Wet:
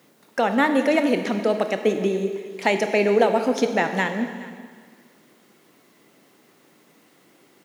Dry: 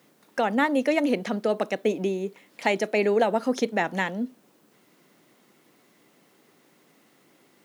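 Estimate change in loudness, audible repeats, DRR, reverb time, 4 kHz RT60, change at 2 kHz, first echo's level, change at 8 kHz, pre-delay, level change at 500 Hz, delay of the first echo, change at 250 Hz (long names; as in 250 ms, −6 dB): +4.0 dB, 1, 6.5 dB, 1.8 s, 1.7 s, +4.0 dB, −19.5 dB, +4.0 dB, 23 ms, +4.0 dB, 418 ms, +3.5 dB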